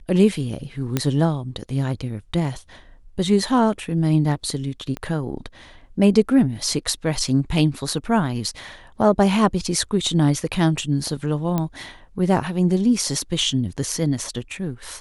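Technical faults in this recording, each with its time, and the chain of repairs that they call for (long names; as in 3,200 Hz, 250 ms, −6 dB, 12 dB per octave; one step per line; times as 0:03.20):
0:00.97: click −6 dBFS
0:04.97: click −16 dBFS
0:11.58: click −10 dBFS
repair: click removal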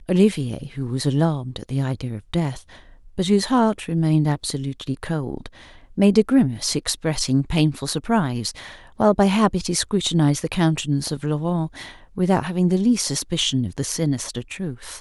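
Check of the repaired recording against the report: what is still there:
0:04.97: click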